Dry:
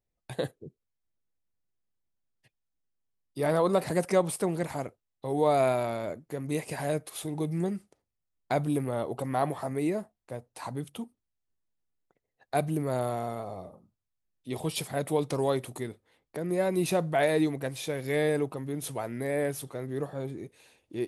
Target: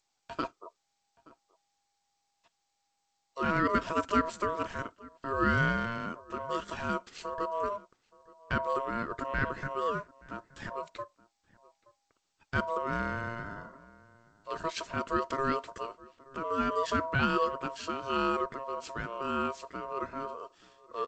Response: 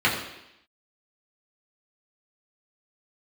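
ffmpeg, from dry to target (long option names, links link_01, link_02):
-filter_complex "[0:a]asplit=3[link_01][link_02][link_03];[link_01]afade=type=out:start_time=7.76:duration=0.02[link_04];[link_02]adynamicsmooth=sensitivity=4.5:basefreq=3500,afade=type=in:start_time=7.76:duration=0.02,afade=type=out:start_time=8.61:duration=0.02[link_05];[link_03]afade=type=in:start_time=8.61:duration=0.02[link_06];[link_04][link_05][link_06]amix=inputs=3:normalize=0,aeval=exprs='val(0)*sin(2*PI*810*n/s)':channel_layout=same,asplit=2[link_07][link_08];[link_08]adelay=874.6,volume=-22dB,highshelf=frequency=4000:gain=-19.7[link_09];[link_07][link_09]amix=inputs=2:normalize=0" -ar 16000 -c:a g722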